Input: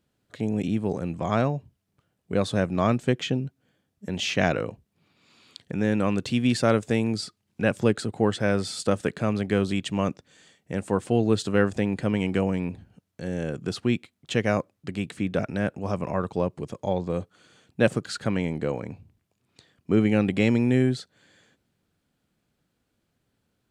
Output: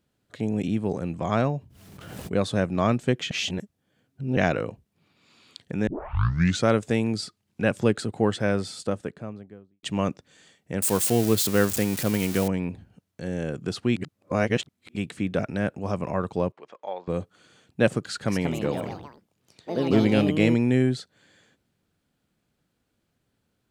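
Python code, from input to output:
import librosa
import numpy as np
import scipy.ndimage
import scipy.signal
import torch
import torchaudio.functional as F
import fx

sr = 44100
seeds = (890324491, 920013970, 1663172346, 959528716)

y = fx.pre_swell(x, sr, db_per_s=36.0, at=(1.44, 2.33))
y = fx.studio_fade_out(y, sr, start_s=8.28, length_s=1.55)
y = fx.crossing_spikes(y, sr, level_db=-18.5, at=(10.82, 12.48))
y = fx.bandpass_edges(y, sr, low_hz=780.0, high_hz=2600.0, at=(16.52, 17.08))
y = fx.echo_pitch(y, sr, ms=238, semitones=4, count=3, db_per_echo=-6.0, at=(18.02, 20.9))
y = fx.edit(y, sr, fx.reverse_span(start_s=3.31, length_s=1.06),
    fx.tape_start(start_s=5.87, length_s=0.81),
    fx.reverse_span(start_s=13.96, length_s=1.0), tone=tone)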